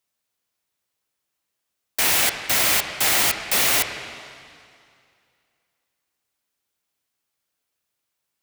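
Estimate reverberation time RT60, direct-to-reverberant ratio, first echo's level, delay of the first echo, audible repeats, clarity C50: 2.3 s, 6.0 dB, none, none, none, 7.5 dB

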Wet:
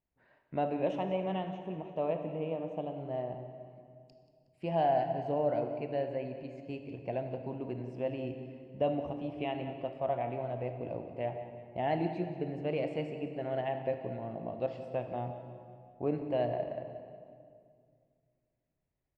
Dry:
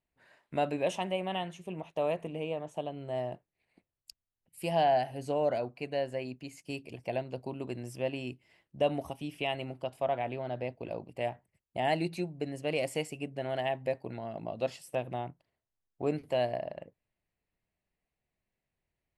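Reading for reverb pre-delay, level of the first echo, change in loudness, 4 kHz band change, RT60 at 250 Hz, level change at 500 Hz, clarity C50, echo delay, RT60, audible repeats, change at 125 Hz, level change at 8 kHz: 21 ms, -15.0 dB, -1.0 dB, -10.0 dB, 2.7 s, -1.0 dB, 6.5 dB, 0.183 s, 2.1 s, 4, +0.5 dB, under -20 dB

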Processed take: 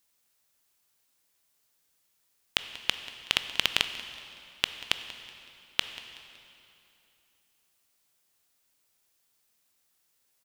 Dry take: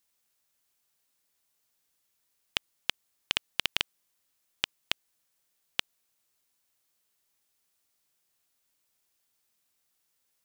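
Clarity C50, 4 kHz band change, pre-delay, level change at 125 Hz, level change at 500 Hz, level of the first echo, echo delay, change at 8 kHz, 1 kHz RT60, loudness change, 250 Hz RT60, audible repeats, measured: 9.5 dB, +3.5 dB, 14 ms, +3.5 dB, +3.5 dB, -18.0 dB, 0.187 s, +3.5 dB, 2.9 s, +2.5 dB, 3.0 s, 1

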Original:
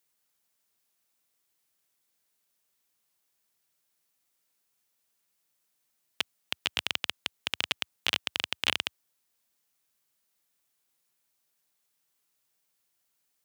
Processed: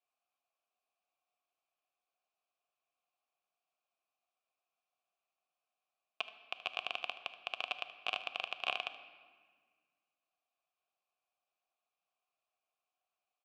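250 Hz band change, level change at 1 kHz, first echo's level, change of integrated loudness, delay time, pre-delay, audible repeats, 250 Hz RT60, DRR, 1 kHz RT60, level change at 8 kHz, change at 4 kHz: -16.0 dB, -1.0 dB, -15.5 dB, -8.0 dB, 76 ms, 5 ms, 1, 2.3 s, 9.5 dB, 1.6 s, -22.0 dB, -10.5 dB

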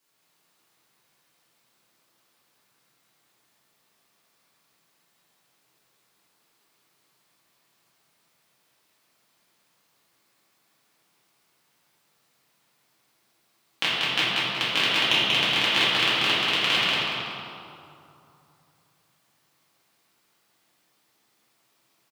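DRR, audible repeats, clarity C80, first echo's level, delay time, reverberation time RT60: -12.5 dB, 1, -4.0 dB, -1.5 dB, 0.187 s, 2.8 s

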